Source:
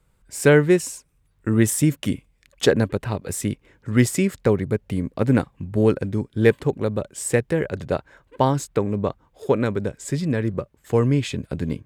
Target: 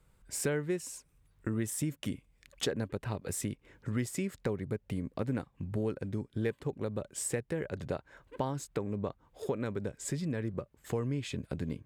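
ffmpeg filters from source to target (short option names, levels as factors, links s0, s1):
-af "acompressor=threshold=0.0251:ratio=3,volume=0.75"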